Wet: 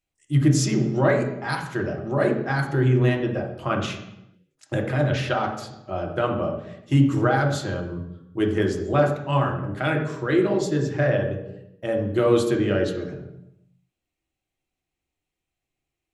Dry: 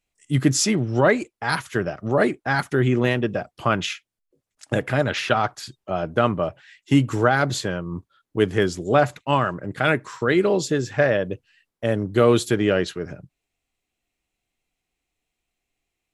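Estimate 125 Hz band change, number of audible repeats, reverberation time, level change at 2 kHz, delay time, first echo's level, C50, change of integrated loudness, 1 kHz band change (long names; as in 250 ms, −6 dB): +2.0 dB, no echo audible, 0.85 s, −4.5 dB, no echo audible, no echo audible, 8.5 dB, −1.5 dB, −3.5 dB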